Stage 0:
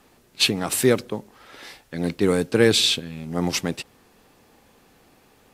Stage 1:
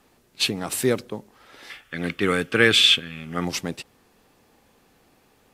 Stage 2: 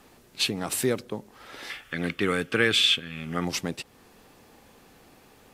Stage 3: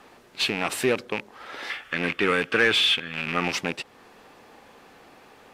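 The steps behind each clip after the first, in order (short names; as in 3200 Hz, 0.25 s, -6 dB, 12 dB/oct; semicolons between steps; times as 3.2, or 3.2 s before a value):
spectral gain 1.7–3.44, 1100–3600 Hz +11 dB; gain -3.5 dB
compressor 1.5:1, threshold -42 dBFS, peak gain reduction 11 dB; gain +5 dB
rattling part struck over -38 dBFS, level -21 dBFS; overdrive pedal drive 14 dB, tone 1900 Hz, clips at -6.5 dBFS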